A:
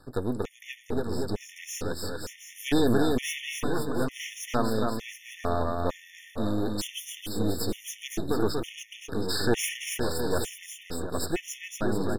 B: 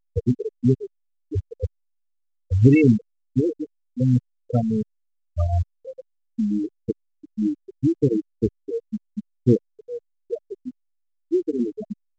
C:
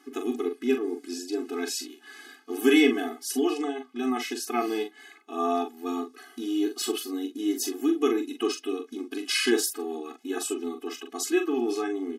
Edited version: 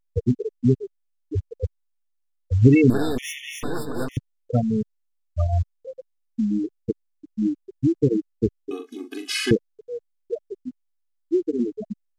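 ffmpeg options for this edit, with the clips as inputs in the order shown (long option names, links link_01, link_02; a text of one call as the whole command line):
ffmpeg -i take0.wav -i take1.wav -i take2.wav -filter_complex "[1:a]asplit=3[link_01][link_02][link_03];[link_01]atrim=end=2.902[link_04];[0:a]atrim=start=2.898:end=4.172[link_05];[link_02]atrim=start=4.168:end=8.712[link_06];[2:a]atrim=start=8.708:end=9.512[link_07];[link_03]atrim=start=9.508[link_08];[link_04][link_05]acrossfade=duration=0.004:curve1=hsin:curve2=hsin[link_09];[link_09][link_06]acrossfade=duration=0.004:curve1=hsin:curve2=hsin[link_10];[link_10][link_07]acrossfade=duration=0.004:curve1=hsin:curve2=hsin[link_11];[link_11][link_08]acrossfade=duration=0.004:curve1=hsin:curve2=hsin" out.wav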